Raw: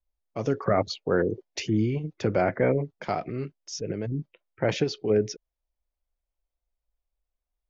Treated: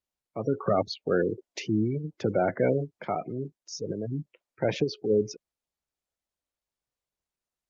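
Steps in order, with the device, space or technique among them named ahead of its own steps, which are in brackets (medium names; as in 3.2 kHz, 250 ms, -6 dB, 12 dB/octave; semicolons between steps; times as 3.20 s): noise-suppressed video call (high-pass 110 Hz 12 dB/octave; spectral gate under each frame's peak -20 dB strong; trim -1 dB; Opus 32 kbps 48 kHz)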